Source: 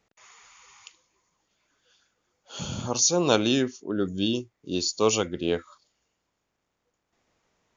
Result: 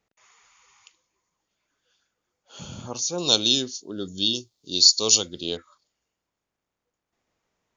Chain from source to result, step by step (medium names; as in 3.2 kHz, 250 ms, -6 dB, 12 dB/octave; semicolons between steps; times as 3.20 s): 3.18–5.57 s: resonant high shelf 2.9 kHz +13 dB, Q 3; trim -5.5 dB